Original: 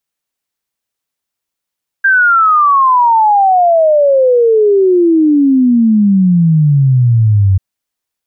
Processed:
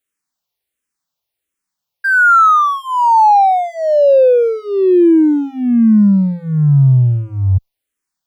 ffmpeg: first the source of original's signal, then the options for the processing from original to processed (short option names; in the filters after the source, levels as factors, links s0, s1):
-f lavfi -i "aevalsrc='0.531*clip(min(t,5.54-t)/0.01,0,1)*sin(2*PI*1600*5.54/log(93/1600)*(exp(log(93/1600)*t/5.54)-1))':d=5.54:s=44100"
-filter_complex "[0:a]asplit=2[s0][s1];[s1]asoftclip=type=hard:threshold=0.1,volume=0.355[s2];[s0][s2]amix=inputs=2:normalize=0,asplit=2[s3][s4];[s4]afreqshift=-1.4[s5];[s3][s5]amix=inputs=2:normalize=1"